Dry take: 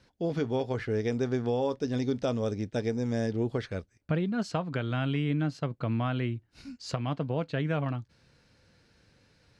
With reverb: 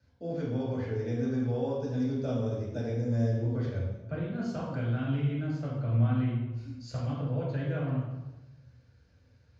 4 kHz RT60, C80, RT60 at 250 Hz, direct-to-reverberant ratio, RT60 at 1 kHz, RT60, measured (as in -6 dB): 0.80 s, 3.0 dB, 1.3 s, -6.5 dB, 1.0 s, 1.1 s